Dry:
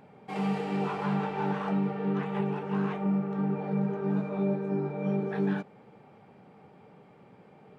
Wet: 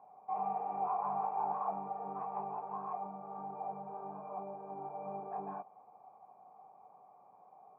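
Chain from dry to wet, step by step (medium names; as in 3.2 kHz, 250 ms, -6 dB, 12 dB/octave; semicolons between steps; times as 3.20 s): tilt EQ +2.5 dB/octave; 2.57–4.79 s: compression, threshold -31 dBFS, peak gain reduction 3.5 dB; cascade formant filter a; distance through air 400 m; trim +10.5 dB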